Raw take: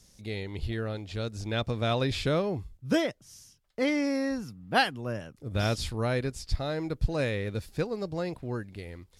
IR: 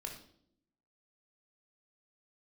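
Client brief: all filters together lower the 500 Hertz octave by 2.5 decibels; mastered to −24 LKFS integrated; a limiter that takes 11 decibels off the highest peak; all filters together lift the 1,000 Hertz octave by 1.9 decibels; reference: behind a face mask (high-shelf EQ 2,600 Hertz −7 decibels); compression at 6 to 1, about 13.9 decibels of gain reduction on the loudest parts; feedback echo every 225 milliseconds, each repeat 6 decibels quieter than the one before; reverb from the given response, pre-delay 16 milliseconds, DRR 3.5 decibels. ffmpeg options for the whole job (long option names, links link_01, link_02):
-filter_complex "[0:a]equalizer=frequency=500:width_type=o:gain=-4.5,equalizer=frequency=1000:width_type=o:gain=6,acompressor=threshold=-33dB:ratio=6,alimiter=level_in=10.5dB:limit=-24dB:level=0:latency=1,volume=-10.5dB,aecho=1:1:225|450|675|900|1125|1350:0.501|0.251|0.125|0.0626|0.0313|0.0157,asplit=2[link_01][link_02];[1:a]atrim=start_sample=2205,adelay=16[link_03];[link_02][link_03]afir=irnorm=-1:irlink=0,volume=-2dB[link_04];[link_01][link_04]amix=inputs=2:normalize=0,highshelf=frequency=2600:gain=-7,volume=18dB"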